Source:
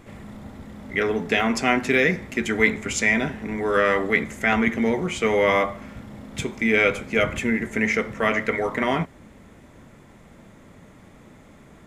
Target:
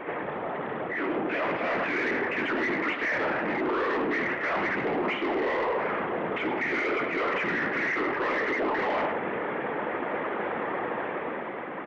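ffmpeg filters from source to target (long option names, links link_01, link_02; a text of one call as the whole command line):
ffmpeg -i in.wav -filter_complex "[0:a]afftfilt=real='hypot(re,im)*cos(2*PI*random(0))':imag='hypot(re,im)*sin(2*PI*random(1))':win_size=512:overlap=0.75,asplit=2[link_01][link_02];[link_02]highpass=frequency=720:poles=1,volume=38dB,asoftclip=type=tanh:threshold=-10dB[link_03];[link_01][link_03]amix=inputs=2:normalize=0,lowpass=frequency=1000:poles=1,volume=-6dB,highpass=frequency=420:width_type=q:width=0.5412,highpass=frequency=420:width_type=q:width=1.307,lowpass=frequency=3000:width_type=q:width=0.5176,lowpass=frequency=3000:width_type=q:width=0.7071,lowpass=frequency=3000:width_type=q:width=1.932,afreqshift=-120,asplit=2[link_04][link_05];[link_05]aecho=0:1:104:0.316[link_06];[link_04][link_06]amix=inputs=2:normalize=0,dynaudnorm=framelen=130:gausssize=21:maxgain=15.5dB,asoftclip=type=tanh:threshold=-7dB,areverse,acompressor=threshold=-25dB:ratio=4,areverse,volume=-2.5dB" out.wav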